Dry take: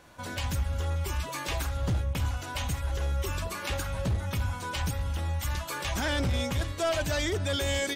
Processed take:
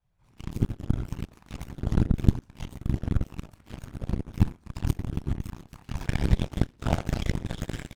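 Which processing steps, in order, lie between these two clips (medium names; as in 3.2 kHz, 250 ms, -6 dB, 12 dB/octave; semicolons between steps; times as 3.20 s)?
half-wave rectifier; simulated room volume 200 m³, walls furnished, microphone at 3.9 m; whisper effect; on a send: delay 133 ms -13 dB; on the sum: Chebyshev shaper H 3 -9 dB, 5 -44 dB, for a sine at 1 dBFS; trim -4 dB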